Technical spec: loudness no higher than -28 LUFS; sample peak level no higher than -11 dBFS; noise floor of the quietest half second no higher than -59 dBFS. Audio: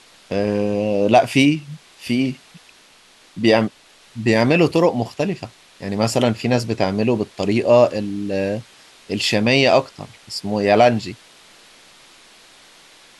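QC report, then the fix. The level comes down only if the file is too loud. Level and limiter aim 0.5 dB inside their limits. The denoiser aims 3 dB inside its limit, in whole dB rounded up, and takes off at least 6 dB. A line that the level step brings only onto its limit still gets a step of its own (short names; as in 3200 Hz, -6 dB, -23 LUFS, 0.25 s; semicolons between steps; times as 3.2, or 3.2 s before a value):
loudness -18.5 LUFS: fail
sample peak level -2.5 dBFS: fail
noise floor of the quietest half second -50 dBFS: fail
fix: gain -10 dB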